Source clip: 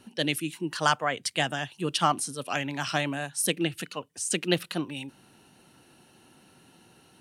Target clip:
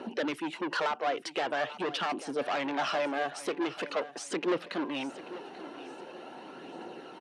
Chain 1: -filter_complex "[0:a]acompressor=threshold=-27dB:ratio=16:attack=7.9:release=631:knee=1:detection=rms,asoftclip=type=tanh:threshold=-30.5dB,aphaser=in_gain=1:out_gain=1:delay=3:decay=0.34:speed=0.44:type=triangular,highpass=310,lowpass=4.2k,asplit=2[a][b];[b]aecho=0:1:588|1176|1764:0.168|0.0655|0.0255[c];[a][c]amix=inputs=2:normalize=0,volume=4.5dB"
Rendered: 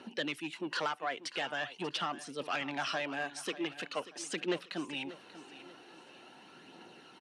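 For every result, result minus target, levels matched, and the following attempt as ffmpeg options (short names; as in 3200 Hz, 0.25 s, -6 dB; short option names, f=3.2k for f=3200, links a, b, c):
echo 0.25 s early; 500 Hz band -3.0 dB
-filter_complex "[0:a]acompressor=threshold=-27dB:ratio=16:attack=7.9:release=631:knee=1:detection=rms,asoftclip=type=tanh:threshold=-30.5dB,aphaser=in_gain=1:out_gain=1:delay=3:decay=0.34:speed=0.44:type=triangular,highpass=310,lowpass=4.2k,asplit=2[a][b];[b]aecho=0:1:838|1676|2514:0.168|0.0655|0.0255[c];[a][c]amix=inputs=2:normalize=0,volume=4.5dB"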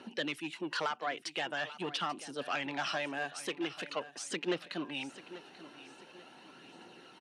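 500 Hz band -3.0 dB
-filter_complex "[0:a]acompressor=threshold=-27dB:ratio=16:attack=7.9:release=631:knee=1:detection=rms,equalizer=f=510:t=o:w=3:g=14,asoftclip=type=tanh:threshold=-30.5dB,aphaser=in_gain=1:out_gain=1:delay=3:decay=0.34:speed=0.44:type=triangular,highpass=310,lowpass=4.2k,asplit=2[a][b];[b]aecho=0:1:838|1676|2514:0.168|0.0655|0.0255[c];[a][c]amix=inputs=2:normalize=0,volume=4.5dB"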